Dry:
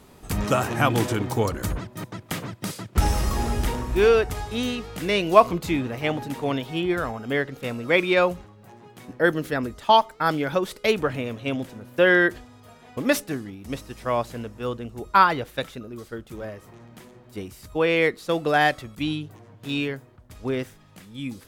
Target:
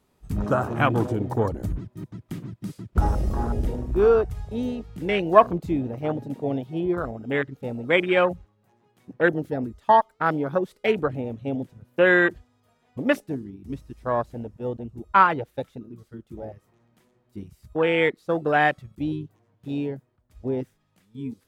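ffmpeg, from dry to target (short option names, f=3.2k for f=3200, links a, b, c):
-af "afwtdn=0.0562"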